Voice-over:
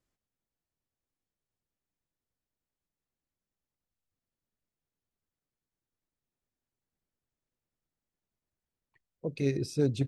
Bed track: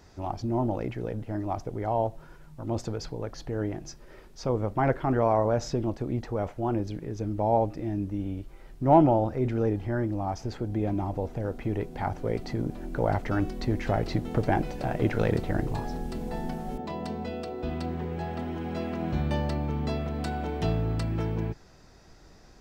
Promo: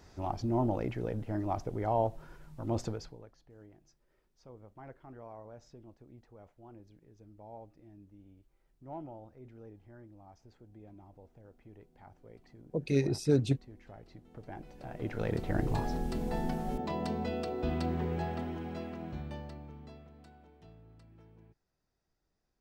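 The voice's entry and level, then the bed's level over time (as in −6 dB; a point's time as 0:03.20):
3.50 s, +1.0 dB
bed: 0:02.87 −2.5 dB
0:03.39 −25 dB
0:14.25 −25 dB
0:15.73 −0.5 dB
0:18.14 −0.5 dB
0:20.61 −29 dB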